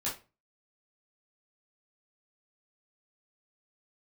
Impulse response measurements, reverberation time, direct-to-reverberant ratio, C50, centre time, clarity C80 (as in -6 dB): 0.30 s, -8.0 dB, 8.0 dB, 28 ms, 16.0 dB